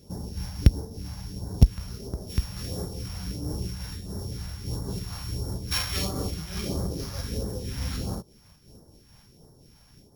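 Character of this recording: a buzz of ramps at a fixed pitch in blocks of 8 samples; phasing stages 2, 1.5 Hz, lowest notch 360–2500 Hz; random flutter of the level

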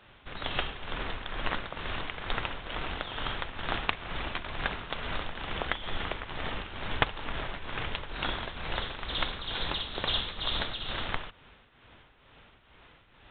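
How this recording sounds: tremolo triangle 2.2 Hz, depth 70%; µ-law

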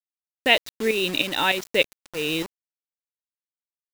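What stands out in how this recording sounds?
tremolo saw up 3.3 Hz, depth 65%; a quantiser's noise floor 6-bit, dither none

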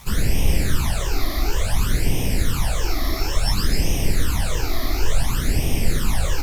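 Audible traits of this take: phasing stages 12, 0.57 Hz, lowest notch 150–1400 Hz; a quantiser's noise floor 8-bit, dither none; Opus

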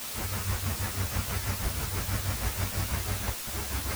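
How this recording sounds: aliases and images of a low sample rate 3.7 kHz, jitter 0%; tremolo triangle 6.2 Hz, depth 85%; a quantiser's noise floor 6-bit, dither triangular; a shimmering, thickened sound

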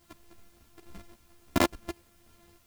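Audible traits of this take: a buzz of ramps at a fixed pitch in blocks of 128 samples; random-step tremolo, depth 70%; a quantiser's noise floor 12-bit, dither triangular; a shimmering, thickened sound

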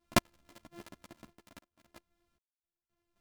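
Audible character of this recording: a buzz of ramps at a fixed pitch in blocks of 128 samples; random-step tremolo 3.8 Hz, depth 100%; a shimmering, thickened sound

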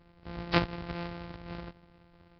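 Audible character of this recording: a buzz of ramps at a fixed pitch in blocks of 256 samples; Nellymoser

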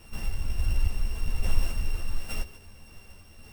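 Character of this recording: a buzz of ramps at a fixed pitch in blocks of 16 samples; random-step tremolo 3.5 Hz; a shimmering, thickened sound

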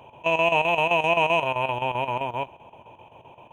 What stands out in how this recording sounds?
chopped level 7.7 Hz, depth 65%, duty 75%

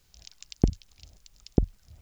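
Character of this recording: a quantiser's noise floor 12-bit, dither triangular

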